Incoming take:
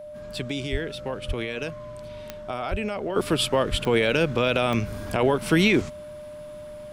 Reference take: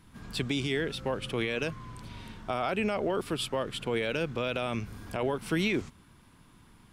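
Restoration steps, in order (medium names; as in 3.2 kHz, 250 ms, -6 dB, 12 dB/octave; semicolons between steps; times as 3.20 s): de-click; band-stop 600 Hz, Q 30; de-plosive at 0.71/1.27/2.70/3.70 s; gain correction -9 dB, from 3.16 s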